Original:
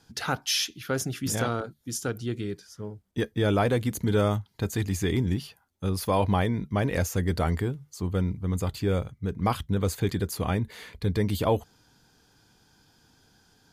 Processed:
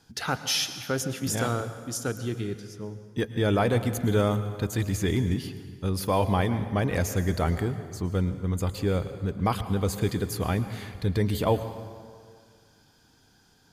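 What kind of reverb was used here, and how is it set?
dense smooth reverb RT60 2 s, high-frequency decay 0.7×, pre-delay 95 ms, DRR 11 dB

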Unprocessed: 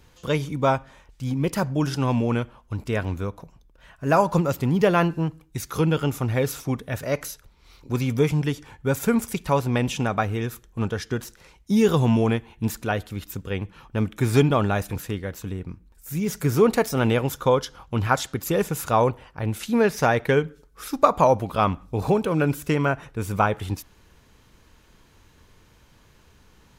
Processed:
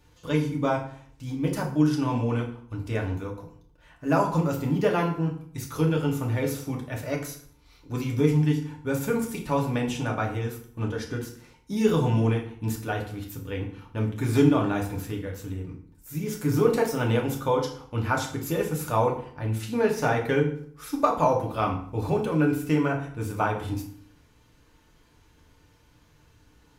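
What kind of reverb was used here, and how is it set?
feedback delay network reverb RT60 0.56 s, low-frequency decay 1.3×, high-frequency decay 0.8×, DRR −0.5 dB
level −7.5 dB

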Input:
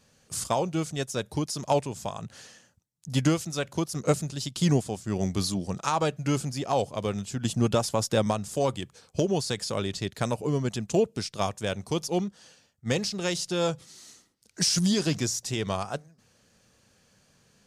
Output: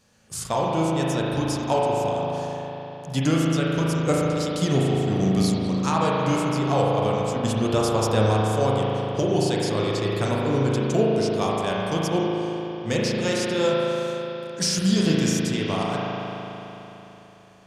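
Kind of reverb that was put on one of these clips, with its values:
spring reverb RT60 3.6 s, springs 37 ms, chirp 65 ms, DRR −4.5 dB

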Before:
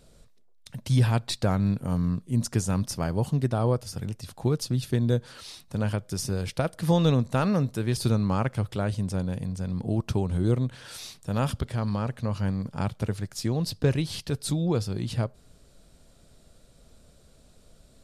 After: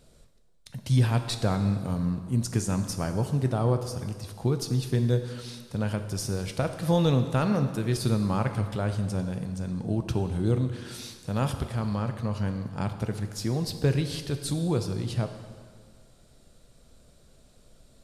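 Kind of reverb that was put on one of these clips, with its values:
dense smooth reverb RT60 1.8 s, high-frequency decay 0.9×, DRR 7 dB
level −1.5 dB

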